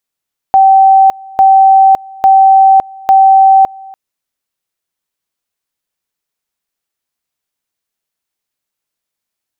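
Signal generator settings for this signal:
tone at two levels in turn 773 Hz −2 dBFS, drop 25.5 dB, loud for 0.56 s, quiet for 0.29 s, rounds 4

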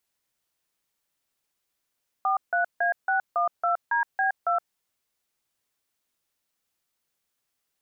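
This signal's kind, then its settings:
touch tones "43A612DB2", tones 119 ms, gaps 158 ms, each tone −23.5 dBFS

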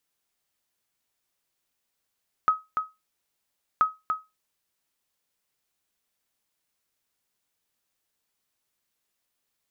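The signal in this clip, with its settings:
ping with an echo 1,270 Hz, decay 0.22 s, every 1.33 s, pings 2, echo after 0.29 s, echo −6 dB −12.5 dBFS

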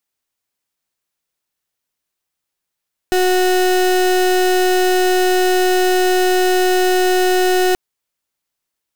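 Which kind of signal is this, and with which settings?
pulse wave 367 Hz, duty 32% −14 dBFS 4.63 s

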